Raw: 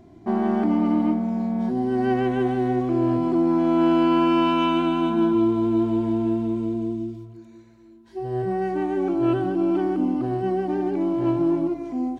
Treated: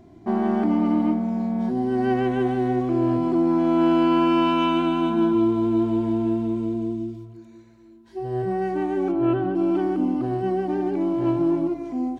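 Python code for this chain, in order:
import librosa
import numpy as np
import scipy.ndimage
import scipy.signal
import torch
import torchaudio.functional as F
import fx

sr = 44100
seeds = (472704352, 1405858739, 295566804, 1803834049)

y = fx.lowpass(x, sr, hz=2900.0, slope=12, at=(9.11, 9.54), fade=0.02)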